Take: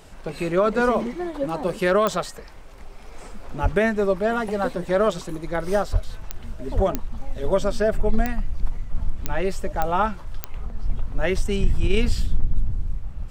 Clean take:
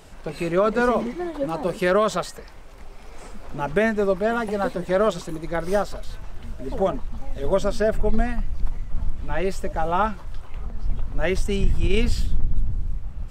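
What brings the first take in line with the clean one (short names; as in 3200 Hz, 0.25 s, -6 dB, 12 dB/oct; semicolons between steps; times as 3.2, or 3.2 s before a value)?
de-click; 3.62–3.74 HPF 140 Hz 24 dB/oct; 5.92–6.04 HPF 140 Hz 24 dB/oct; 6.75–6.87 HPF 140 Hz 24 dB/oct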